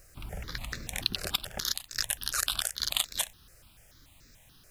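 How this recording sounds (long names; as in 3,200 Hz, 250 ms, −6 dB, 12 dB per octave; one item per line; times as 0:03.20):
a quantiser's noise floor 10 bits, dither none
notches that jump at a steady rate 6.9 Hz 920–3,100 Hz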